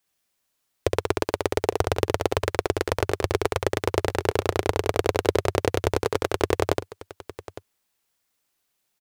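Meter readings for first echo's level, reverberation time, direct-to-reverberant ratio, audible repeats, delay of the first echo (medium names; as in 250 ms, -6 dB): -4.0 dB, no reverb, no reverb, 2, 67 ms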